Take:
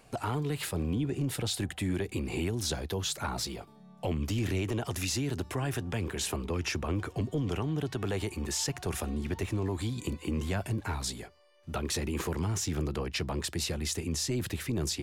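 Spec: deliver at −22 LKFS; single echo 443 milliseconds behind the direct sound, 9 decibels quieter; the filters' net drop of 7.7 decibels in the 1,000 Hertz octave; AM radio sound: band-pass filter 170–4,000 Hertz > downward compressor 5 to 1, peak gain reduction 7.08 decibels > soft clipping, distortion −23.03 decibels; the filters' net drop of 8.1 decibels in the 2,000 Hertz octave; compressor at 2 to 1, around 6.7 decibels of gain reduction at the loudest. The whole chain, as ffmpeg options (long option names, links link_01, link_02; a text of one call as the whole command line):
ffmpeg -i in.wav -af "equalizer=frequency=1000:width_type=o:gain=-8.5,equalizer=frequency=2000:width_type=o:gain=-8,acompressor=threshold=-40dB:ratio=2,highpass=170,lowpass=4000,aecho=1:1:443:0.355,acompressor=threshold=-42dB:ratio=5,asoftclip=threshold=-35.5dB,volume=25.5dB" out.wav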